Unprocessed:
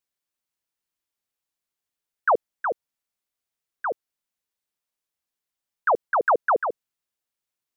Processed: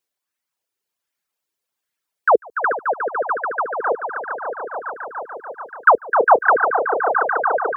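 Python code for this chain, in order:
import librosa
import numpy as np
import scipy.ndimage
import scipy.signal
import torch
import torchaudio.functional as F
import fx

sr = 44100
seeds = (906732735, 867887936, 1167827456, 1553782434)

y = scipy.signal.sosfilt(scipy.signal.butter(4, 51.0, 'highpass', fs=sr, output='sos'), x)
y = fx.low_shelf(y, sr, hz=230.0, db=-5.5)
y = fx.echo_swell(y, sr, ms=145, loudest=5, wet_db=-10)
y = fx.dereverb_blind(y, sr, rt60_s=0.97)
y = fx.bell_lfo(y, sr, hz=1.3, low_hz=380.0, high_hz=1900.0, db=7)
y = F.gain(torch.from_numpy(y), 5.0).numpy()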